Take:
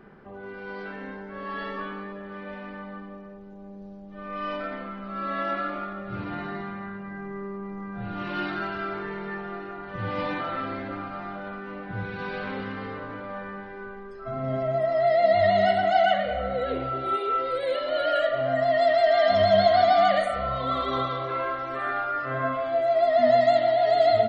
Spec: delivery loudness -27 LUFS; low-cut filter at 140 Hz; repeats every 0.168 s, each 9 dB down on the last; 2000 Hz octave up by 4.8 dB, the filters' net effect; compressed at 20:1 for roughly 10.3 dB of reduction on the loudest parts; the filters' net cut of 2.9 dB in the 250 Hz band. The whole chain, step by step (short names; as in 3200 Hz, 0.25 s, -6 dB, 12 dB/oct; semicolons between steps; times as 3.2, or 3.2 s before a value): HPF 140 Hz; bell 250 Hz -3 dB; bell 2000 Hz +6 dB; compressor 20:1, threshold -25 dBFS; feedback echo 0.168 s, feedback 35%, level -9 dB; gain +3 dB